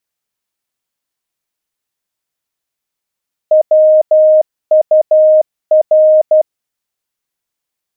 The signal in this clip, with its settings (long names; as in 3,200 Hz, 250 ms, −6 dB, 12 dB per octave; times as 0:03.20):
Morse code "WUR" 12 words per minute 621 Hz −4 dBFS